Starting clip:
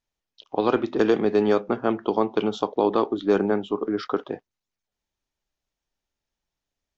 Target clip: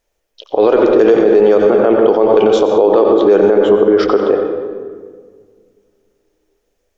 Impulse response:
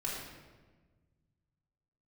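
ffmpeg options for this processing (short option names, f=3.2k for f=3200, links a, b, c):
-filter_complex "[0:a]equalizer=f=125:t=o:w=1:g=-9,equalizer=f=250:t=o:w=1:g=-6,equalizer=f=500:t=o:w=1:g=10,equalizer=f=1k:t=o:w=1:g=-5,equalizer=f=4k:t=o:w=1:g=-6,asplit=2[a][b];[1:a]atrim=start_sample=2205,asetrate=34398,aresample=44100,adelay=88[c];[b][c]afir=irnorm=-1:irlink=0,volume=-11.5dB[d];[a][d]amix=inputs=2:normalize=0,alimiter=level_in=17dB:limit=-1dB:release=50:level=0:latency=1,volume=-1dB"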